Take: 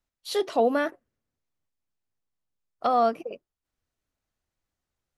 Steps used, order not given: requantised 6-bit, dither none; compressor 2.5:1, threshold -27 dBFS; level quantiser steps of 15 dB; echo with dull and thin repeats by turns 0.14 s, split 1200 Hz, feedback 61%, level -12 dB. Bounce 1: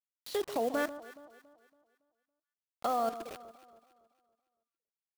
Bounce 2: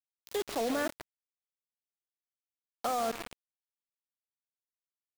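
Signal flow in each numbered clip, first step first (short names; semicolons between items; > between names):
requantised > compressor > level quantiser > echo with dull and thin repeats by turns; level quantiser > echo with dull and thin repeats by turns > requantised > compressor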